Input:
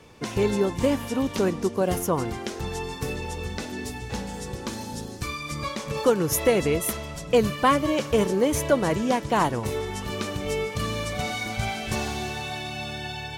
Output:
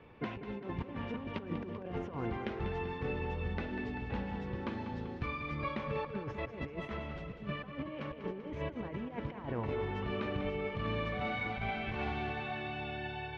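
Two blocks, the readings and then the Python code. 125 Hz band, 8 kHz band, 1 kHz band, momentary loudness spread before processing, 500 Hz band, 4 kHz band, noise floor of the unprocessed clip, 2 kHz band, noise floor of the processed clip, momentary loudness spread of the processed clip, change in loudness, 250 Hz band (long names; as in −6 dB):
−8.5 dB, below −40 dB, −12.0 dB, 11 LU, −15.0 dB, −15.5 dB, −37 dBFS, −9.0 dB, −47 dBFS, 5 LU, −12.5 dB, −12.0 dB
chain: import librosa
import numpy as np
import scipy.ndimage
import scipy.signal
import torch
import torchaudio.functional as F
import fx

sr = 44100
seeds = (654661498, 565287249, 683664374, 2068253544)

p1 = fx.over_compress(x, sr, threshold_db=-28.0, ratio=-0.5)
p2 = scipy.signal.sosfilt(scipy.signal.butter(4, 2800.0, 'lowpass', fs=sr, output='sos'), p1)
p3 = p2 + fx.echo_feedback(p2, sr, ms=194, feedback_pct=59, wet_db=-10, dry=0)
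y = F.gain(torch.from_numpy(p3), -9.0).numpy()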